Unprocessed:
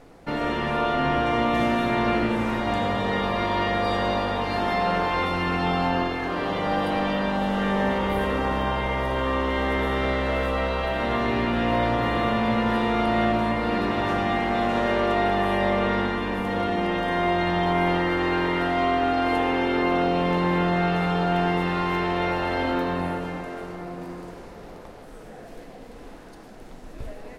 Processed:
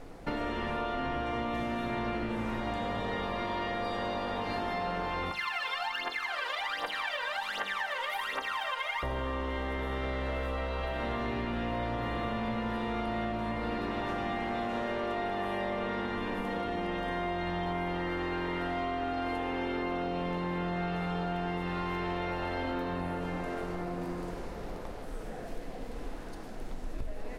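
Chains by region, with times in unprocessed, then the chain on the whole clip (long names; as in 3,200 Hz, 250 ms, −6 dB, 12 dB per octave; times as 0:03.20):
0:05.31–0:09.03: high-pass filter 1,300 Hz + phase shifter 1.3 Hz, delay 2.1 ms, feedback 78%
whole clip: low-shelf EQ 69 Hz +9 dB; mains-hum notches 50/100/150/200 Hz; downward compressor, threshold −31 dBFS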